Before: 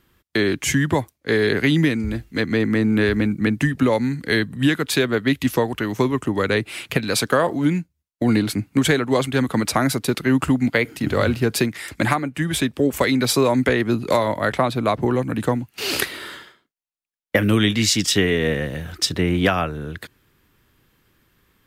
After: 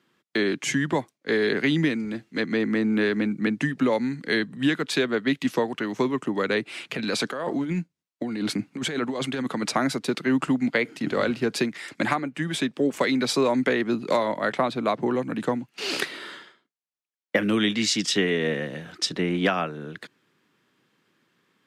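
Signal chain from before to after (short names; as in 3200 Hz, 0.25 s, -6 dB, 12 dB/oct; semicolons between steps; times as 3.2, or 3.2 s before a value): HPF 160 Hz 24 dB/oct; 6.94–9.71 negative-ratio compressor -23 dBFS, ratio -1; LPF 7100 Hz 12 dB/oct; gain -4 dB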